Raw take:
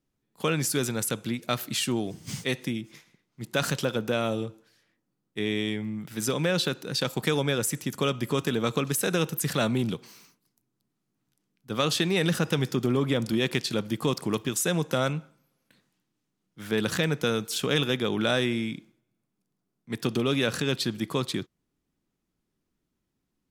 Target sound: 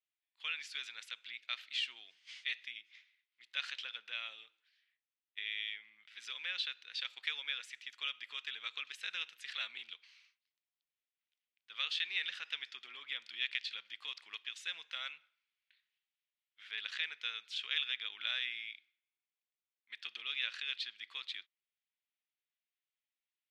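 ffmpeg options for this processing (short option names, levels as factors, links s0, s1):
-af "asuperpass=centerf=2700:order=4:qfactor=1.4,volume=0.596"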